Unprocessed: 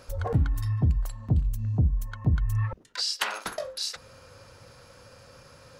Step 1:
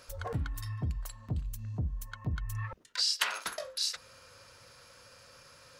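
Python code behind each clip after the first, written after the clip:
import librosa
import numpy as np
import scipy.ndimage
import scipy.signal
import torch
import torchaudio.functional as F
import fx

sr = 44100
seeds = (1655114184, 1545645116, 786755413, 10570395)

y = fx.tilt_shelf(x, sr, db=-5.5, hz=790.0)
y = fx.notch(y, sr, hz=800.0, q=12.0)
y = y * librosa.db_to_amplitude(-5.5)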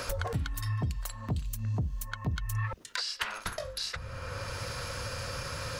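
y = fx.band_squash(x, sr, depth_pct=100)
y = y * librosa.db_to_amplitude(3.0)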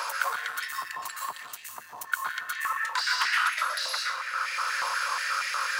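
y = fx.rev_plate(x, sr, seeds[0], rt60_s=0.81, hf_ratio=0.85, predelay_ms=105, drr_db=-1.5)
y = fx.leveller(y, sr, passes=2)
y = fx.filter_held_highpass(y, sr, hz=8.3, low_hz=970.0, high_hz=2000.0)
y = y * librosa.db_to_amplitude(-5.0)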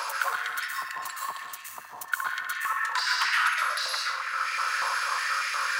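y = fx.echo_banded(x, sr, ms=66, feedback_pct=75, hz=1600.0, wet_db=-7.5)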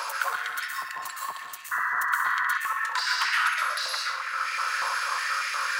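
y = fx.spec_paint(x, sr, seeds[1], shape='noise', start_s=1.71, length_s=0.87, low_hz=960.0, high_hz=2000.0, level_db=-27.0)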